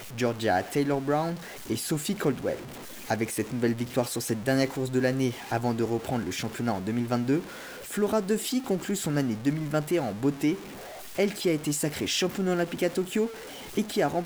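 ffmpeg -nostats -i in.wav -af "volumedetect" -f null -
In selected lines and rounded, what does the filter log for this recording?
mean_volume: -28.2 dB
max_volume: -11.6 dB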